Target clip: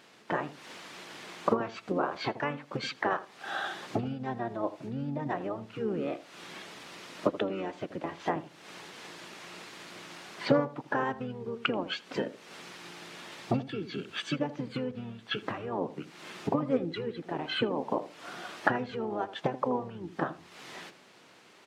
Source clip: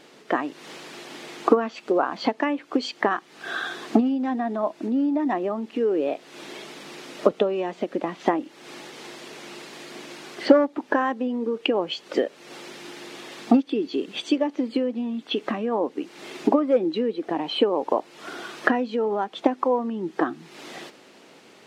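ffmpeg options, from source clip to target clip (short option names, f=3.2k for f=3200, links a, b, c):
-filter_complex "[0:a]highpass=f=750:p=1,asplit=2[a][b];[b]adelay=80,lowpass=f=1k:p=1,volume=-12.5dB,asplit=2[c][d];[d]adelay=80,lowpass=f=1k:p=1,volume=0.29,asplit=2[e][f];[f]adelay=80,lowpass=f=1k:p=1,volume=0.29[g];[a][c][e][g]amix=inputs=4:normalize=0,asplit=3[h][i][j];[i]asetrate=22050,aresample=44100,atempo=2,volume=-2dB[k];[j]asetrate=37084,aresample=44100,atempo=1.18921,volume=-7dB[l];[h][k][l]amix=inputs=3:normalize=0,volume=-6dB"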